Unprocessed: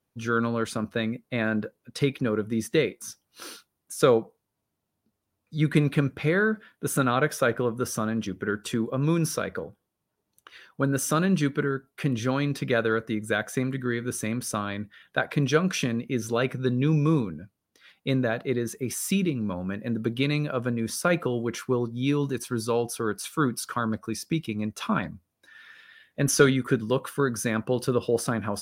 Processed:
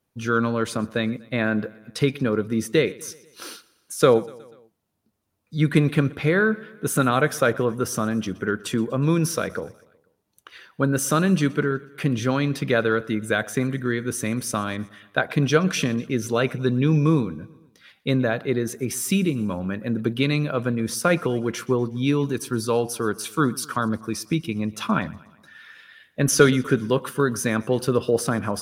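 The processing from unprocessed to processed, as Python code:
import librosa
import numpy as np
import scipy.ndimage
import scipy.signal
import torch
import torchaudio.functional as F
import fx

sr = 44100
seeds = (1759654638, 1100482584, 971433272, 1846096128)

y = fx.echo_feedback(x, sr, ms=122, feedback_pct=56, wet_db=-22.0)
y = F.gain(torch.from_numpy(y), 3.5).numpy()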